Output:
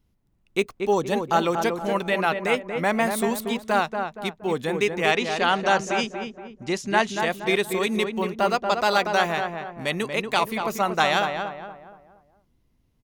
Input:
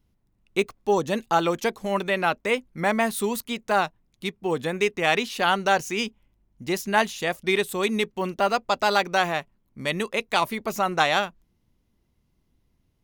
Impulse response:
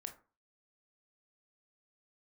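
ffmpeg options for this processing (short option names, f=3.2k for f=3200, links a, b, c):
-filter_complex "[0:a]asettb=1/sr,asplit=3[a][b][c];[a]atrim=end=5.114[d];[b]atrim=start=5.11:end=7.2,asetpts=PTS-STARTPTS,afade=t=in:d=0.004:c=qsin,afade=t=out:st=2.086:d=0.004:c=qsin,lowpass=f=8.5k:w=0.5412,lowpass=f=8.5k:w=1.3066[e];[c]atrim=start=7.196[f];[d][e]acrossfade=d=0.004:c1=hsin:c2=qsin[g];[g][f]acrossfade=d=0.004:c1=qsin:c2=hsin,asplit=2[h][i];[i]adelay=235,lowpass=f=1.6k:p=1,volume=-5dB,asplit=2[j][k];[k]adelay=235,lowpass=f=1.6k:p=1,volume=0.43,asplit=2[l][m];[m]adelay=235,lowpass=f=1.6k:p=1,volume=0.43,asplit=2[n][o];[o]adelay=235,lowpass=f=1.6k:p=1,volume=0.43,asplit=2[p][q];[q]adelay=235,lowpass=f=1.6k:p=1,volume=0.43[r];[h][j][l][n][p][r]amix=inputs=6:normalize=0"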